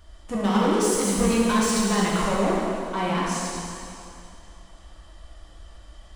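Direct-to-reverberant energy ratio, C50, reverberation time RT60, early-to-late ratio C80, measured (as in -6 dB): -6.0 dB, -2.5 dB, 2.6 s, -0.5 dB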